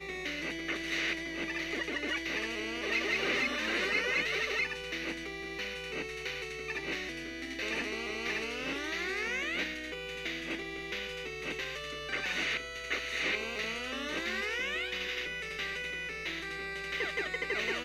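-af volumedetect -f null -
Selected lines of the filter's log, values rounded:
mean_volume: -35.7 dB
max_volume: -18.4 dB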